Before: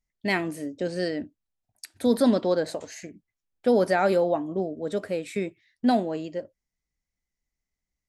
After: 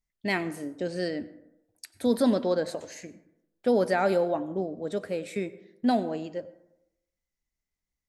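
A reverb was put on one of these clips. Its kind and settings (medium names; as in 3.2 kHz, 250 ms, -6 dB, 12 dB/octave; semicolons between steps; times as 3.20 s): plate-style reverb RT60 0.87 s, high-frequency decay 0.4×, pre-delay 80 ms, DRR 16.5 dB; trim -2.5 dB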